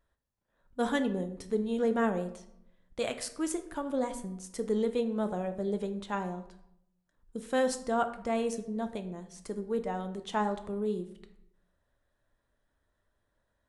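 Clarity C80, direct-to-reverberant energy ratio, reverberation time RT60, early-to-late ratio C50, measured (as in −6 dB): 15.0 dB, 8.0 dB, 0.75 s, 12.0 dB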